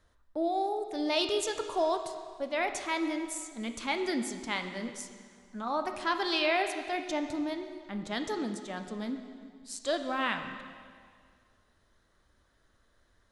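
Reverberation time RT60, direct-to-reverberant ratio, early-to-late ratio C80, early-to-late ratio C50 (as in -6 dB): 2.0 s, 6.0 dB, 8.5 dB, 7.5 dB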